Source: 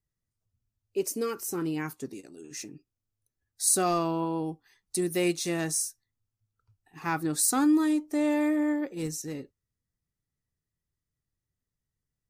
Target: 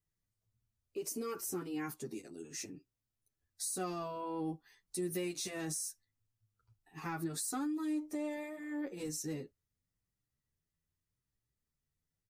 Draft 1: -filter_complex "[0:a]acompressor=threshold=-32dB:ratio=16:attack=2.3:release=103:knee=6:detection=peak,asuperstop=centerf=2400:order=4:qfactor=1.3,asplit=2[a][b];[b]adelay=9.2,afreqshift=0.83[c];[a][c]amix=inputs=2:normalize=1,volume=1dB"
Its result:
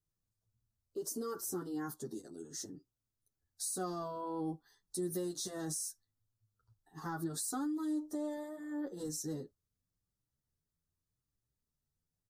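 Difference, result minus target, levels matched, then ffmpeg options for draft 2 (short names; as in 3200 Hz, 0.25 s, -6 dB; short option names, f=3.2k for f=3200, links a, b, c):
2000 Hz band -5.0 dB
-filter_complex "[0:a]acompressor=threshold=-32dB:ratio=16:attack=2.3:release=103:knee=6:detection=peak,asplit=2[a][b];[b]adelay=9.2,afreqshift=0.83[c];[a][c]amix=inputs=2:normalize=1,volume=1dB"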